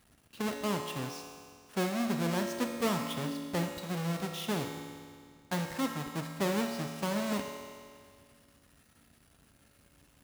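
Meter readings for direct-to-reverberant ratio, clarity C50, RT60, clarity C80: 3.0 dB, 4.0 dB, 2.0 s, 5.5 dB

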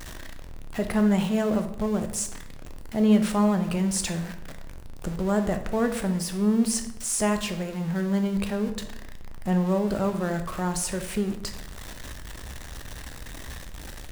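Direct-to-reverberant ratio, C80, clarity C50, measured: 6.5 dB, 13.5 dB, 10.0 dB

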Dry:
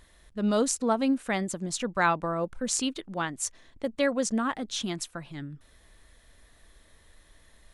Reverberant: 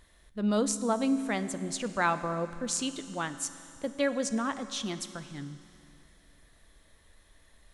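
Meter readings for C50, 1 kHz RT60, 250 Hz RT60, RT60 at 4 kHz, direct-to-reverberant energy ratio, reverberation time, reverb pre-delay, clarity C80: 12.5 dB, 2.8 s, 2.8 s, 2.7 s, 11.5 dB, 2.8 s, 11 ms, 13.0 dB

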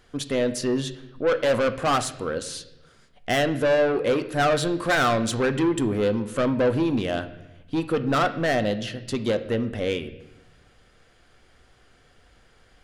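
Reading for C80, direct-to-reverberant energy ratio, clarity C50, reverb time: 15.5 dB, 9.0 dB, 13.5 dB, 0.90 s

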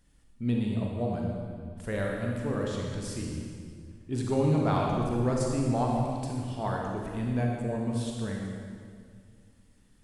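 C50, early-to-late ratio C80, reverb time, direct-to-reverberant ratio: 0.0 dB, 1.5 dB, 2.0 s, −1.5 dB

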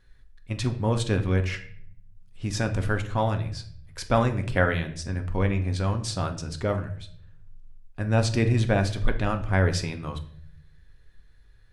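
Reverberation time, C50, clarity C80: 0.60 s, 12.5 dB, 16.0 dB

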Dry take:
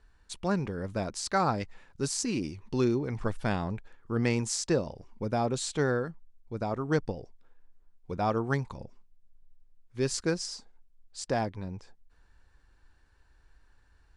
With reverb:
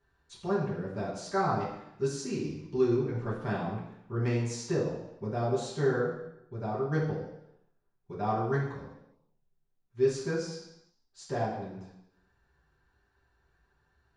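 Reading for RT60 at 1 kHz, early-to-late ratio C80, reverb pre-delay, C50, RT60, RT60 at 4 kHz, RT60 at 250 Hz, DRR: 0.80 s, 6.5 dB, 3 ms, 3.5 dB, 0.80 s, 0.85 s, 0.85 s, −9.5 dB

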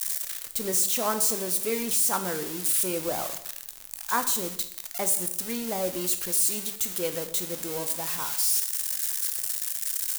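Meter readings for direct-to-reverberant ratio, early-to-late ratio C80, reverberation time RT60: 8.0 dB, 14.0 dB, 0.70 s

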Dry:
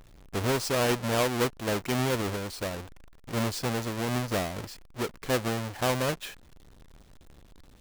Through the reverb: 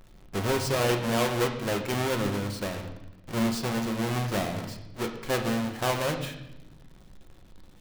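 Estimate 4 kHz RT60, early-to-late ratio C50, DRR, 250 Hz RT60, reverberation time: 0.90 s, 8.0 dB, 3.5 dB, 1.6 s, 0.95 s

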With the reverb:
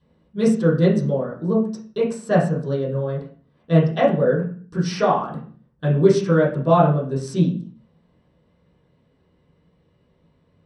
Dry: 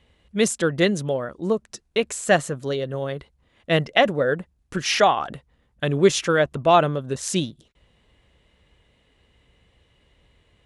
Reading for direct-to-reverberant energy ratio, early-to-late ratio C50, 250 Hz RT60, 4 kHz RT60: −11.0 dB, 7.0 dB, 0.70 s, 0.40 s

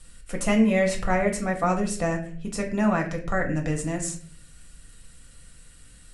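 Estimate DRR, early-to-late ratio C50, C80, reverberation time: 1.5 dB, 9.5 dB, 13.0 dB, 0.50 s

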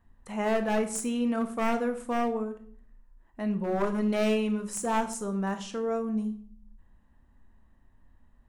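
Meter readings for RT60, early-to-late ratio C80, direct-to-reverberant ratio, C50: 0.55 s, 16.5 dB, 8.0 dB, 12.5 dB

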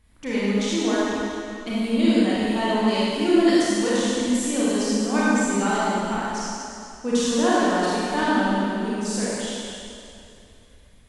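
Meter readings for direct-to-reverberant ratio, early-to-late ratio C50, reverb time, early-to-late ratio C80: −9.0 dB, −6.0 dB, 2.7 s, −3.5 dB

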